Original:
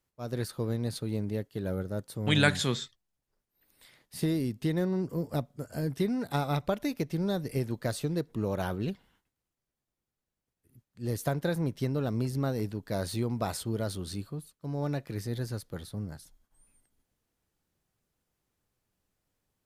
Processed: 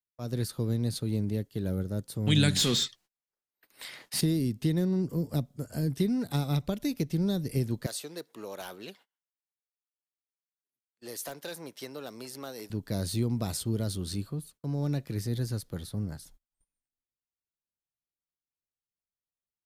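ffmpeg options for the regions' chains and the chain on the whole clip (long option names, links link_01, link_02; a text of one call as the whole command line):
ffmpeg -i in.wav -filter_complex "[0:a]asettb=1/sr,asplit=3[link_01][link_02][link_03];[link_01]atrim=end=2.564[link_04];[link_02]atrim=start=2.56:end=4.21,asetpts=PTS-STARTPTS,afade=type=in:duration=0.004:curve=qsin,afade=type=out:start_time=1.646:duration=0.004:curve=qsin,bandreject=frequency=3500:width=27,asplit=2[link_05][link_06];[link_06]highpass=frequency=720:poles=1,volume=21dB,asoftclip=type=tanh:threshold=-17dB[link_07];[link_05][link_07]amix=inputs=2:normalize=0,lowpass=frequency=4700:poles=1,volume=-6dB[link_08];[link_03]atrim=start=4.206[link_09];[link_04][link_08]acrossfade=duration=0.004:curve1=hsin:curve2=qsin[link_10];[link_10][link_09]acrossfade=duration=0.004:curve1=qsin:curve2=hsin,asettb=1/sr,asplit=3[link_11][link_12][link_13];[link_11]atrim=end=7.864[link_14];[link_12]atrim=start=7.86:end=12.7,asetpts=PTS-STARTPTS,afade=type=in:duration=0.004:curve=qsin,afade=type=out:start_time=4.836:duration=0.004:curve=qsin,highpass=610,asoftclip=type=hard:threshold=-28.5dB[link_15];[link_13]atrim=start=12.696[link_16];[link_14][link_15]acrossfade=duration=0.004:curve1=hsin:curve2=qsin[link_17];[link_17][link_16]acrossfade=duration=0.004:curve1=qsin:curve2=hsin,agate=range=-29dB:threshold=-57dB:ratio=16:detection=peak,acrossover=split=350|3000[link_18][link_19][link_20];[link_19]acompressor=threshold=-52dB:ratio=2[link_21];[link_18][link_21][link_20]amix=inputs=3:normalize=0,volume=3.5dB" out.wav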